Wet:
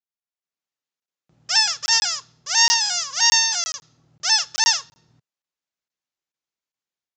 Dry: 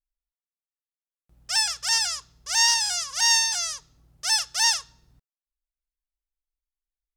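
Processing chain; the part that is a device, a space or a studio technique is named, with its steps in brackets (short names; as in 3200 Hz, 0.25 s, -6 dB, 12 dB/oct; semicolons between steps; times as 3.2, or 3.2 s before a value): call with lost packets (HPF 110 Hz 24 dB/oct; downsampling 16000 Hz; AGC gain up to 10.5 dB; packet loss packets of 20 ms); gain -3 dB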